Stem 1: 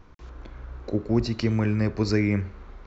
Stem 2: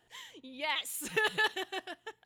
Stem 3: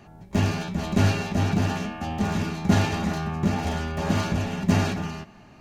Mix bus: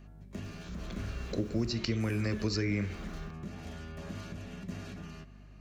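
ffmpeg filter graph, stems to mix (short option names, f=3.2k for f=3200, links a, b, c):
-filter_complex "[0:a]dynaudnorm=f=230:g=3:m=4dB,aemphasis=mode=production:type=75fm,bandreject=f=71.27:t=h:w=4,bandreject=f=142.54:t=h:w=4,bandreject=f=213.81:t=h:w=4,bandreject=f=285.08:t=h:w=4,bandreject=f=356.35:t=h:w=4,bandreject=f=427.62:t=h:w=4,bandreject=f=498.89:t=h:w=4,bandreject=f=570.16:t=h:w=4,bandreject=f=641.43:t=h:w=4,bandreject=f=712.7:t=h:w=4,bandreject=f=783.97:t=h:w=4,bandreject=f=855.24:t=h:w=4,bandreject=f=926.51:t=h:w=4,bandreject=f=997.78:t=h:w=4,bandreject=f=1.06905k:t=h:w=4,bandreject=f=1.14032k:t=h:w=4,bandreject=f=1.21159k:t=h:w=4,bandreject=f=1.28286k:t=h:w=4,bandreject=f=1.35413k:t=h:w=4,bandreject=f=1.4254k:t=h:w=4,bandreject=f=1.49667k:t=h:w=4,bandreject=f=1.56794k:t=h:w=4,bandreject=f=1.63921k:t=h:w=4,bandreject=f=1.71048k:t=h:w=4,bandreject=f=1.78175k:t=h:w=4,bandreject=f=1.85302k:t=h:w=4,bandreject=f=1.92429k:t=h:w=4,bandreject=f=1.99556k:t=h:w=4,bandreject=f=2.06683k:t=h:w=4,bandreject=f=2.1381k:t=h:w=4,bandreject=f=2.20937k:t=h:w=4,bandreject=f=2.28064k:t=h:w=4,bandreject=f=2.35191k:t=h:w=4,bandreject=f=2.42318k:t=h:w=4,bandreject=f=2.49445k:t=h:w=4,bandreject=f=2.56572k:t=h:w=4,bandreject=f=2.63699k:t=h:w=4,bandreject=f=2.70826k:t=h:w=4,adelay=450,volume=-3.5dB[a];[1:a]adelay=1150,volume=-11dB[b];[2:a]volume=-10dB[c];[b][c]amix=inputs=2:normalize=0,acompressor=threshold=-42dB:ratio=2.5,volume=0dB[d];[a][d]amix=inputs=2:normalize=0,acrossover=split=220|6200[e][f][g];[e]acompressor=threshold=-33dB:ratio=4[h];[f]acompressor=threshold=-33dB:ratio=4[i];[g]acompressor=threshold=-57dB:ratio=4[j];[h][i][j]amix=inputs=3:normalize=0,aeval=exprs='val(0)+0.00282*(sin(2*PI*50*n/s)+sin(2*PI*2*50*n/s)/2+sin(2*PI*3*50*n/s)/3+sin(2*PI*4*50*n/s)/4+sin(2*PI*5*50*n/s)/5)':c=same,equalizer=f=850:w=4.4:g=-11"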